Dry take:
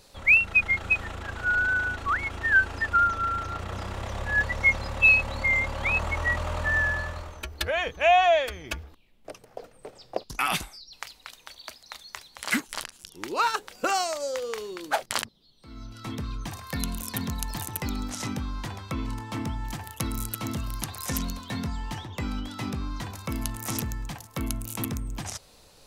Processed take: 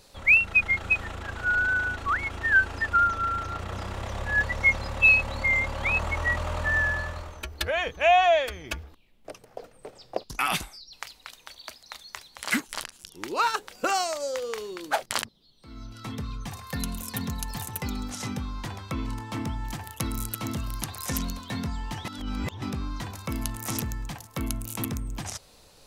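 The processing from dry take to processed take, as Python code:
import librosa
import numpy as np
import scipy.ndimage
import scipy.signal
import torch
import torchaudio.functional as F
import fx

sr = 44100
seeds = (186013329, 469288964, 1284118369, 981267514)

y = fx.notch_comb(x, sr, f0_hz=320.0, at=(16.07, 18.64))
y = fx.edit(y, sr, fx.reverse_span(start_s=22.05, length_s=0.57), tone=tone)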